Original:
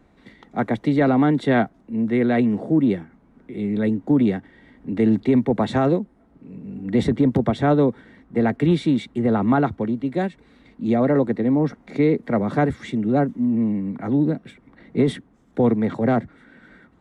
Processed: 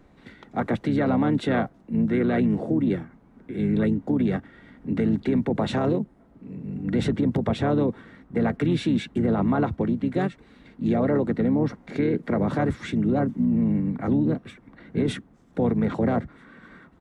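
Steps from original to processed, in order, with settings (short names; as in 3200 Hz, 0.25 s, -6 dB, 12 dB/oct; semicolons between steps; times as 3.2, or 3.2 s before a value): harmoniser -5 st -6 dB; limiter -14.5 dBFS, peak gain reduction 9 dB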